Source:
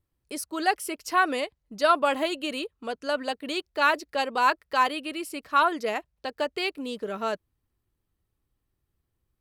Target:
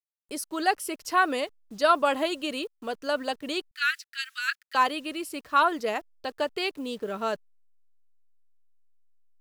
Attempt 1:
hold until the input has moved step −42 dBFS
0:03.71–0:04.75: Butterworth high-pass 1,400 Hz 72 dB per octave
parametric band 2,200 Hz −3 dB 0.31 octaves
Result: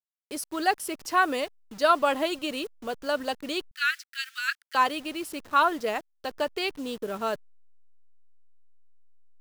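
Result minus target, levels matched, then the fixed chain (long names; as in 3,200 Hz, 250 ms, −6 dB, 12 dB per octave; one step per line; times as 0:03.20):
hold until the input has moved: distortion +11 dB
hold until the input has moved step −52.5 dBFS
0:03.71–0:04.75: Butterworth high-pass 1,400 Hz 72 dB per octave
parametric band 2,200 Hz −3 dB 0.31 octaves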